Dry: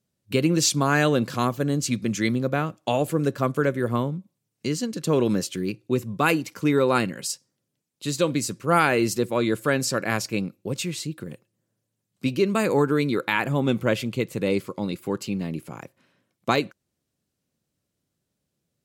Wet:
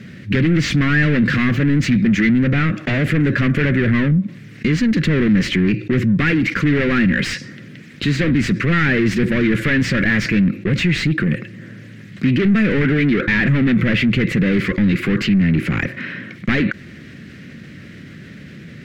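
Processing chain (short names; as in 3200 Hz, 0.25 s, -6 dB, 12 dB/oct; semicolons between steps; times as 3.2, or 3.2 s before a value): sine folder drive 9 dB, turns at -6 dBFS; bell 2900 Hz -5.5 dB 1.5 oct; overdrive pedal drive 25 dB, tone 1900 Hz, clips at -8 dBFS; EQ curve 210 Hz 0 dB, 900 Hz -27 dB, 1900 Hz +2 dB, 9100 Hz -26 dB; fast leveller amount 50%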